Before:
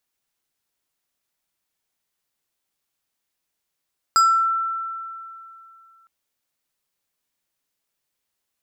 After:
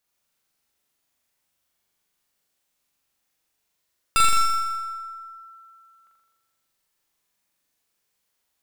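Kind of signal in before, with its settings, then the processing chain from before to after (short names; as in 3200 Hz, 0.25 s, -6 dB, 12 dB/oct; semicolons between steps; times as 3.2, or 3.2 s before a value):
FM tone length 1.91 s, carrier 1340 Hz, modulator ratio 4.67, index 0.65, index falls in 0.46 s exponential, decay 2.70 s, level -11 dB
one-sided fold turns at -18.5 dBFS; on a send: flutter echo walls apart 7.2 m, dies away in 1.2 s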